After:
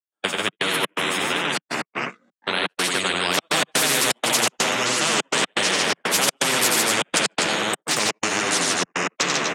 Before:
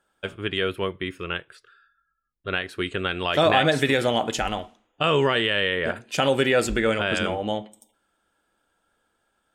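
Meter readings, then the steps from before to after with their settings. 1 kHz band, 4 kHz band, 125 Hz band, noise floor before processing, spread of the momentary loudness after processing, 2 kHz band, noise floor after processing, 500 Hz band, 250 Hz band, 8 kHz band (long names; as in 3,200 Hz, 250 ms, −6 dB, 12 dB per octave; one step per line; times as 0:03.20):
+3.0 dB, +6.5 dB, −5.0 dB, −74 dBFS, 6 LU, +4.5 dB, below −85 dBFS, −3.0 dB, −1.0 dB, +18.5 dB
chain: delay with pitch and tempo change per echo 175 ms, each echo −4 semitones, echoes 3, each echo −6 dB
in parallel at −2 dB: brickwall limiter −17.5 dBFS, peak gain reduction 10.5 dB
on the sum: bass and treble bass −12 dB, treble +7 dB
loudspeakers that aren't time-aligned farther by 31 metres −5 dB, 50 metres −3 dB, 85 metres −10 dB
flanger 1.4 Hz, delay 5.8 ms, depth 7.2 ms, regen +22%
gate pattern ".xxx.xx.xxxxx.x" 124 BPM −60 dB
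spectral tilt −2 dB per octave
noise gate −33 dBFS, range −45 dB
Butterworth high-pass 170 Hz 36 dB per octave
every bin compressed towards the loudest bin 4 to 1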